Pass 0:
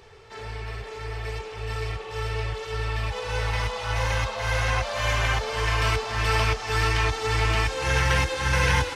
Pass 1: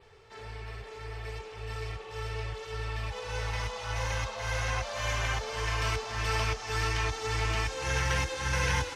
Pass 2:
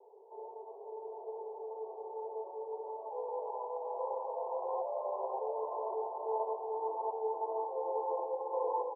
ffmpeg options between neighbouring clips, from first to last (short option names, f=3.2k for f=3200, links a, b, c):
-af "adynamicequalizer=threshold=0.00398:dfrequency=6200:dqfactor=2.6:tfrequency=6200:tqfactor=2.6:attack=5:release=100:ratio=0.375:range=2.5:mode=boostabove:tftype=bell,volume=-7dB"
-filter_complex "[0:a]asuperpass=centerf=600:order=20:qfactor=0.95,asplit=2[a][b];[b]aecho=0:1:679:0.447[c];[a][c]amix=inputs=2:normalize=0,volume=2dB"